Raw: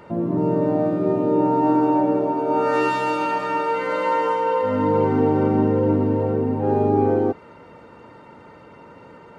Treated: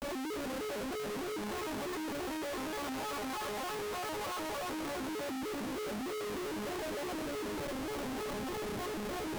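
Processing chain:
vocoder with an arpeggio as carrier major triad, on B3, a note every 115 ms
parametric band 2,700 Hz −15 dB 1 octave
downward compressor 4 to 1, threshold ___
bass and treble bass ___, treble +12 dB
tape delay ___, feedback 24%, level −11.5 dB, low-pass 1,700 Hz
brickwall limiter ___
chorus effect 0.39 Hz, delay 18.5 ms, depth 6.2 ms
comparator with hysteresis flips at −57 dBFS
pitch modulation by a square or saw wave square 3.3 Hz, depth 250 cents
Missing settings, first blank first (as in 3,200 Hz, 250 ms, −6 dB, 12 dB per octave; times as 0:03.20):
−21 dBFS, −14 dB, 190 ms, −28 dBFS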